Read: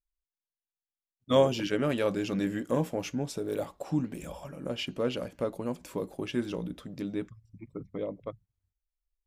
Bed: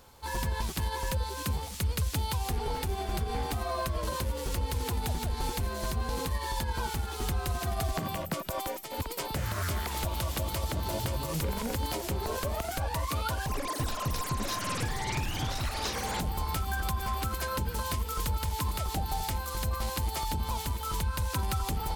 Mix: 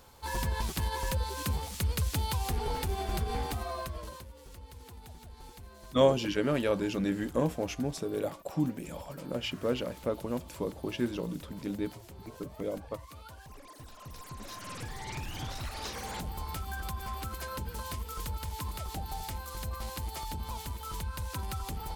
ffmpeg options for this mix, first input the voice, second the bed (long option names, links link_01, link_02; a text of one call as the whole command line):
ffmpeg -i stem1.wav -i stem2.wav -filter_complex "[0:a]adelay=4650,volume=-0.5dB[link_01];[1:a]volume=11dB,afade=type=out:start_time=3.31:duration=0.97:silence=0.141254,afade=type=in:start_time=13.9:duration=1.49:silence=0.266073[link_02];[link_01][link_02]amix=inputs=2:normalize=0" out.wav